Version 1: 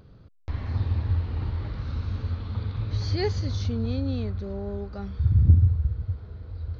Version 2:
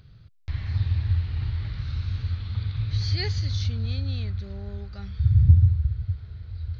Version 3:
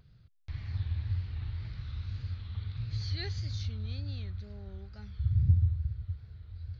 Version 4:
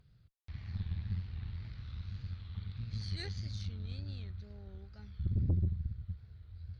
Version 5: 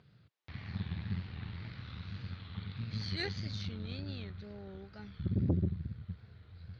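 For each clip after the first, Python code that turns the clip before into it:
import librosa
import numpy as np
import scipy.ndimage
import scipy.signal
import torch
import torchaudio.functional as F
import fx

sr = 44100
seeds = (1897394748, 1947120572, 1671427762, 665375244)

y1 = fx.graphic_eq(x, sr, hz=(125, 250, 500, 1000, 2000, 4000), db=(5, -10, -9, -7, 4, 5))
y2 = fx.wow_flutter(y1, sr, seeds[0], rate_hz=2.1, depth_cents=92.0)
y2 = F.gain(torch.from_numpy(y2), -9.0).numpy()
y3 = fx.tube_stage(y2, sr, drive_db=25.0, bias=0.8)
y4 = fx.bandpass_edges(y3, sr, low_hz=170.0, high_hz=3900.0)
y4 = F.gain(torch.from_numpy(y4), 9.0).numpy()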